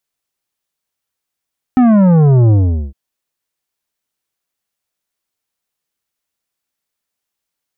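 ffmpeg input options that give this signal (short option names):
-f lavfi -i "aevalsrc='0.447*clip((1.16-t)/0.42,0,1)*tanh(3.35*sin(2*PI*260*1.16/log(65/260)*(exp(log(65/260)*t/1.16)-1)))/tanh(3.35)':d=1.16:s=44100"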